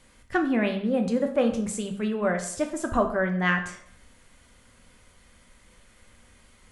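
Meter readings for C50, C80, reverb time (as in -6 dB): 9.0 dB, 12.5 dB, 0.60 s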